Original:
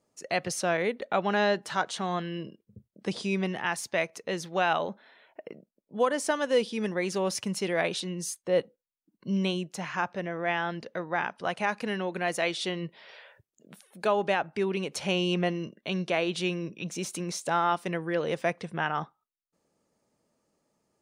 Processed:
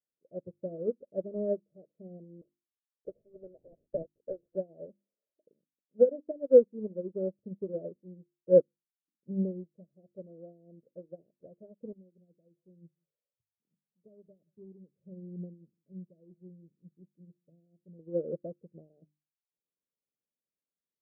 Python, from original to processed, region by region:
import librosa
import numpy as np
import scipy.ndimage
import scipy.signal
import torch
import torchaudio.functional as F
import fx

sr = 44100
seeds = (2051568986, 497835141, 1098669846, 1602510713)

y = fx.chain(x, sr, fx.highpass(hz=770.0, slope=12),
    fx.tilt_shelf(db=-6.5, hz=1400.0),
    fx.leveller(passes=5), at=(2.41, 4.55))
y = fx.chain(y, sr, fx.bandpass_q(hz=130.0, q=1.1),
    fx.echo_single(ms=175, db=-21.5), at=(11.92, 17.99))
y = scipy.signal.sosfilt(scipy.signal.butter(16, 610.0, 'lowpass', fs=sr, output='sos'), y)
y = fx.hum_notches(y, sr, base_hz=50, count=7)
y = fx.upward_expand(y, sr, threshold_db=-44.0, expansion=2.5)
y = y * 10.0 ** (8.0 / 20.0)